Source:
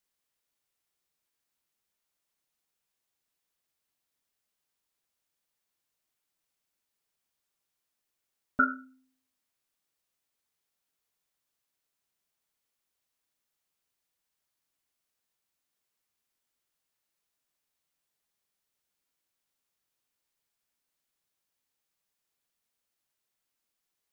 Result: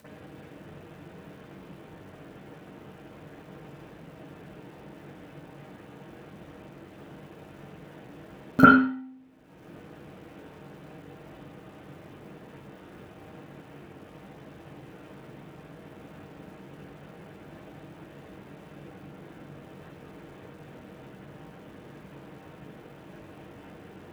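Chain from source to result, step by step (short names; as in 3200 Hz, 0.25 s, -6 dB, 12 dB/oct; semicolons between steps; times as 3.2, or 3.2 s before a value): median filter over 41 samples; HPF 93 Hz 12 dB/oct; low shelf 460 Hz +7 dB; in parallel at +0.5 dB: upward compressor, threshold -29 dBFS; on the sum: reverb, pre-delay 42 ms, DRR -12.5 dB; gain -2.5 dB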